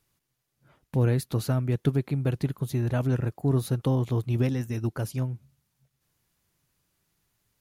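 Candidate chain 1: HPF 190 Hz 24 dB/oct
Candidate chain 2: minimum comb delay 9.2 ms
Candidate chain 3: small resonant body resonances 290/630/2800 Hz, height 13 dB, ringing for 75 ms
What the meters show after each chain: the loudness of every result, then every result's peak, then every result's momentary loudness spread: -32.0, -28.5, -24.5 LUFS; -15.0, -14.5, -8.0 dBFS; 6, 6, 7 LU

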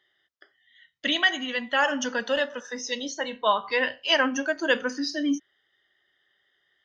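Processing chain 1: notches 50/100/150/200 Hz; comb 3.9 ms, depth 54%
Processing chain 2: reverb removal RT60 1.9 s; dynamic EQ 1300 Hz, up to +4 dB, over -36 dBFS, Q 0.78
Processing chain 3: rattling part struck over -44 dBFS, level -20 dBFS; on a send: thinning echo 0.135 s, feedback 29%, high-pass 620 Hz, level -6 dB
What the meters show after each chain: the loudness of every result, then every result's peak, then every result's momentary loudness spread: -24.5, -24.0, -24.5 LUFS; -5.0, -6.0, -7.0 dBFS; 8, 10, 9 LU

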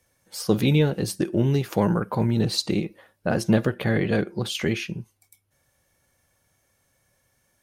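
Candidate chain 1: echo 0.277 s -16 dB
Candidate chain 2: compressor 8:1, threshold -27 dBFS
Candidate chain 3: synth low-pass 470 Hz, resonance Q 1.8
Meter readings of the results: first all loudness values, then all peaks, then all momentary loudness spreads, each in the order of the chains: -24.0, -32.5, -22.0 LUFS; -7.0, -14.5, -4.0 dBFS; 11, 6, 11 LU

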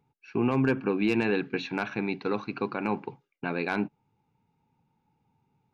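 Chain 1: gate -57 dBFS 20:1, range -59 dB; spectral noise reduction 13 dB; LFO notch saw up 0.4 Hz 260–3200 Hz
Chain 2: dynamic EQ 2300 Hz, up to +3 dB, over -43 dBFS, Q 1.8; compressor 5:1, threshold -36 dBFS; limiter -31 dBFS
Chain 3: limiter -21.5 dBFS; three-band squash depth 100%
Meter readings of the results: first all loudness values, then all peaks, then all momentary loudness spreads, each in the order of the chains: -32.0, -43.0, -34.0 LUFS; -15.5, -31.0, -16.5 dBFS; 10, 8, 13 LU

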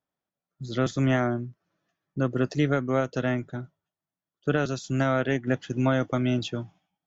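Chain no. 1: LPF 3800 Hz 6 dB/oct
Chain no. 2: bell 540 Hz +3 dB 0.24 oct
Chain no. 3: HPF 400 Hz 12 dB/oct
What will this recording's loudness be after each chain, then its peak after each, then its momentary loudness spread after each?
-27.0, -26.5, -31.0 LUFS; -11.5, -10.5, -14.0 dBFS; 14, 15, 10 LU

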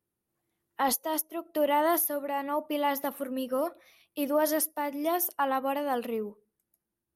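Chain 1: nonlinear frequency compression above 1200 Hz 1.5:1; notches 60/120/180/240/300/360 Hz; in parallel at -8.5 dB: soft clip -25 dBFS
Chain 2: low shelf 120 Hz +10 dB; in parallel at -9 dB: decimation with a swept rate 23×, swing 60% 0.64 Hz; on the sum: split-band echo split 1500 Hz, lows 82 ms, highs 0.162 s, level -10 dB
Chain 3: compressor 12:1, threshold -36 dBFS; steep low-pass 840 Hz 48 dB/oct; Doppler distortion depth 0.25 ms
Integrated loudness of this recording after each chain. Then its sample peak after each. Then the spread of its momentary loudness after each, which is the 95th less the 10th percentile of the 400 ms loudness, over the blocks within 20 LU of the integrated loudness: -27.5, -27.0, -43.0 LUFS; -14.0, -11.5, -28.0 dBFS; 9, 8, 6 LU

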